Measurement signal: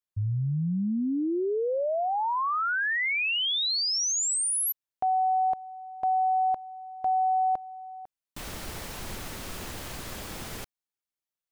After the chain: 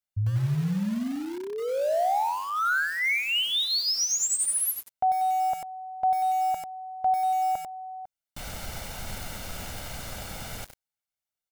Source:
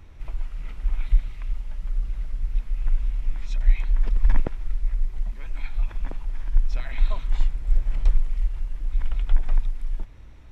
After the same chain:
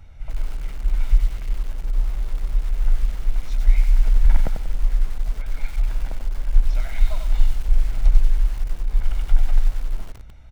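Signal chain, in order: comb 1.4 ms, depth 56%; bit-crushed delay 94 ms, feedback 35%, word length 6-bit, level -6 dB; trim -1 dB

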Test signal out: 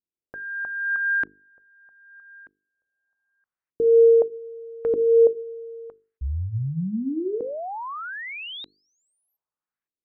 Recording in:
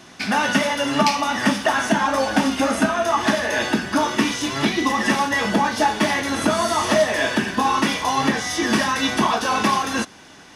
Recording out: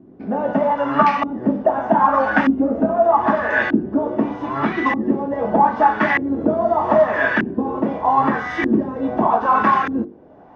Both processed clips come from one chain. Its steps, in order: Chebyshev shaper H 3 -27 dB, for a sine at -2.5 dBFS; LFO low-pass saw up 0.81 Hz 300–1900 Hz; hum notches 50/100/150/200/250/300/350/400/450 Hz; trim +1.5 dB

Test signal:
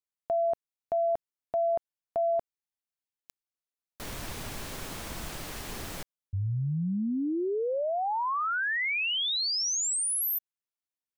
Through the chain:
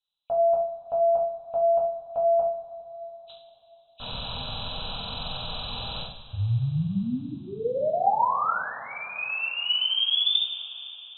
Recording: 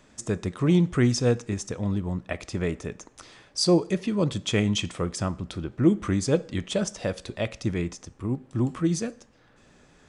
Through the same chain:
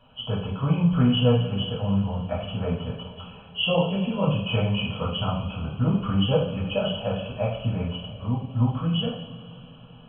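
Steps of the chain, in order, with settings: knee-point frequency compression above 2.3 kHz 4:1; static phaser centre 820 Hz, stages 4; two-slope reverb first 0.53 s, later 4.4 s, from -19 dB, DRR -5.5 dB

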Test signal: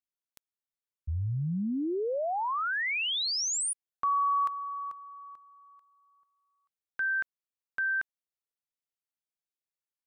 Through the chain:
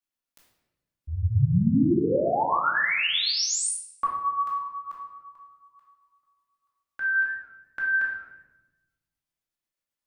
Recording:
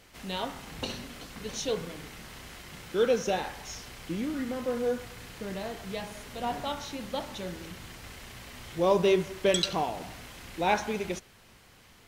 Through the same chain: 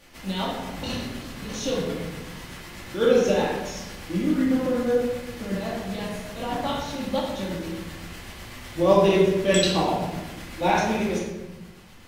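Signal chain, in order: dynamic bell 180 Hz, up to +3 dB, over -42 dBFS, Q 0.71; tremolo triangle 8 Hz, depth 60%; simulated room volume 500 m³, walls mixed, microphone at 2.4 m; modulated delay 101 ms, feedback 33%, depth 213 cents, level -21.5 dB; trim +2 dB

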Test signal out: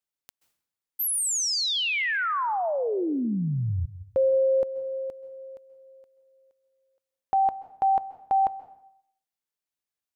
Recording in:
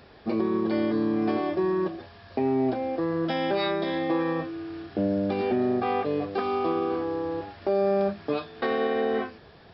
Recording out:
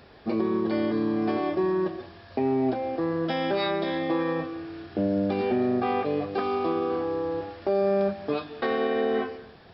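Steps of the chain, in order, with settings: plate-style reverb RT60 0.67 s, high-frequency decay 0.9×, pre-delay 120 ms, DRR 14.5 dB

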